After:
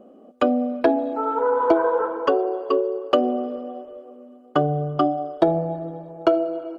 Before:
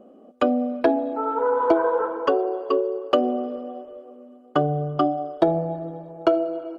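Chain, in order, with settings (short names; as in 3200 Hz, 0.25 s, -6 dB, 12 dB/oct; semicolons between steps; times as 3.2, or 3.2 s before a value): 0.98–1.4 high shelf 4500 Hz +7 dB; gain +1 dB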